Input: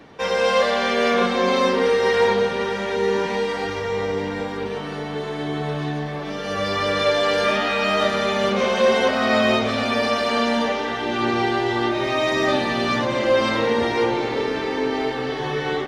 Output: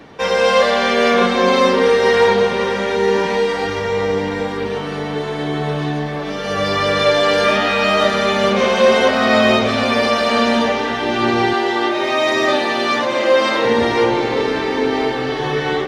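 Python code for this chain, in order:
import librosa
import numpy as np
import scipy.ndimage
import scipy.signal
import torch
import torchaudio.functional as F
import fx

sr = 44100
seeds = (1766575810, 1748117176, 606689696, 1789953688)

y = fx.highpass(x, sr, hz=310.0, slope=12, at=(11.53, 13.65))
y = y + 10.0 ** (-15.5 / 20.0) * np.pad(y, (int(1015 * sr / 1000.0), 0))[:len(y)]
y = y * librosa.db_to_amplitude(5.0)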